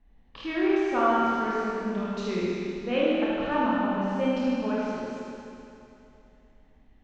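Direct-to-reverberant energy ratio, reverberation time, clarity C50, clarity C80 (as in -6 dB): -8.0 dB, 2.8 s, -5.0 dB, -2.5 dB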